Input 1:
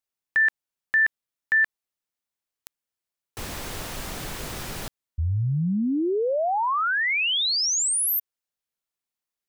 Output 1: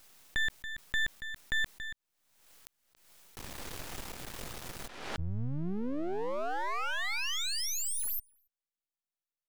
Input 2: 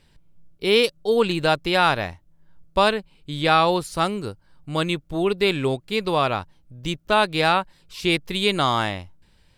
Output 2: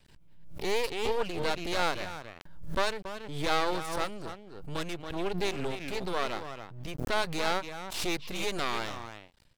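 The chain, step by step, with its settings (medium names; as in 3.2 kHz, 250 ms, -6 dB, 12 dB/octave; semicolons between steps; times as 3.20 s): speakerphone echo 280 ms, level -10 dB; half-wave rectifier; swell ahead of each attack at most 57 dB/s; trim -6.5 dB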